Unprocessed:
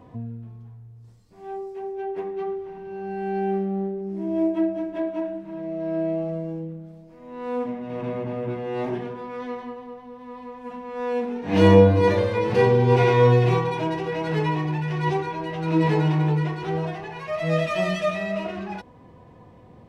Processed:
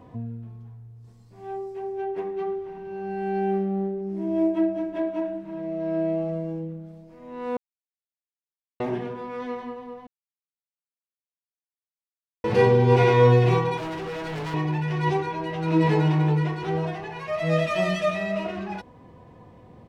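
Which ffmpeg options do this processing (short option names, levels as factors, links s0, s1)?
-filter_complex "[0:a]asplit=2[s0][s1];[s1]afade=t=in:st=0.51:d=0.01,afade=t=out:st=1.49:d=0.01,aecho=0:1:550|1100|1650|2200:0.334965|0.133986|0.0535945|0.0214378[s2];[s0][s2]amix=inputs=2:normalize=0,asettb=1/sr,asplit=3[s3][s4][s5];[s3]atrim=end=13.774[s6];[s4]atrim=start=13.77:end=14.54,asetpts=PTS-STARTPTS,afade=t=in:d=0.004:c=qsin,afade=t=out:st=0.766:d=0.004:c=qsin,asoftclip=type=hard:threshold=0.0335[s7];[s5]atrim=start=14.536[s8];[s6][s7]acrossfade=d=0.004:c1=hsin:c2=qsin[s9];[s9][s8]acrossfade=d=0.004:c1=qsin:c2=hsin,asplit=5[s10][s11][s12][s13][s14];[s10]atrim=end=7.57,asetpts=PTS-STARTPTS,afade=t=out:st=7.566:d=0.004:c=hsin[s15];[s11]atrim=start=7.57:end=8.8,asetpts=PTS-STARTPTS,volume=0[s16];[s12]atrim=start=8.8:end=10.07,asetpts=PTS-STARTPTS,afade=t=in:d=0.004:c=hsin,afade=t=out:st=1.266:d=0.004:c=hsin[s17];[s13]atrim=start=10.07:end=12.44,asetpts=PTS-STARTPTS,volume=0[s18];[s14]atrim=start=12.44,asetpts=PTS-STARTPTS,afade=t=in:d=0.004:c=hsin[s19];[s15][s16][s17][s18][s19]concat=n=5:v=0:a=1"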